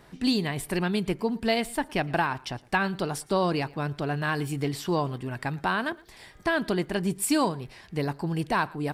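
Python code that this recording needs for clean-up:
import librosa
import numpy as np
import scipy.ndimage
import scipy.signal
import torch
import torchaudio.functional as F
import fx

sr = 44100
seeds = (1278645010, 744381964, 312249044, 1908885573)

y = fx.fix_declick_ar(x, sr, threshold=6.5)
y = fx.fix_echo_inverse(y, sr, delay_ms=113, level_db=-23.5)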